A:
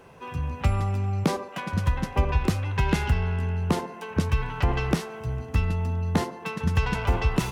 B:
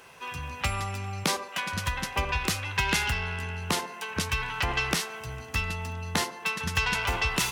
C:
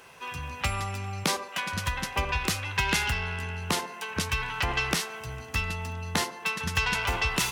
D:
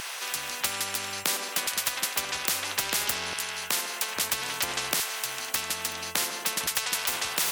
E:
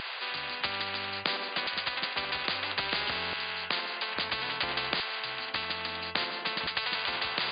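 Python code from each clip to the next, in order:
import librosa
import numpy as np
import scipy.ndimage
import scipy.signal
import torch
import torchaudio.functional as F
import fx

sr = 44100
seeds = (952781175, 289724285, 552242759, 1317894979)

y1 = fx.tilt_shelf(x, sr, db=-9.5, hz=970.0)
y2 = y1
y3 = fx.filter_lfo_highpass(y2, sr, shape='saw_down', hz=0.6, low_hz=410.0, high_hz=1500.0, q=0.82)
y3 = fx.spectral_comp(y3, sr, ratio=4.0)
y3 = y3 * 10.0 ** (3.0 / 20.0)
y4 = fx.brickwall_lowpass(y3, sr, high_hz=4900.0)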